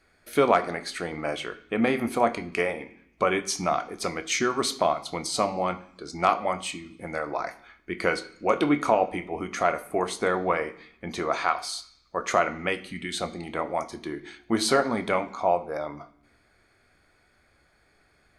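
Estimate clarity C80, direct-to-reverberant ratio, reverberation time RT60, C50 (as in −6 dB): 18.5 dB, 9.0 dB, 0.70 s, 16.0 dB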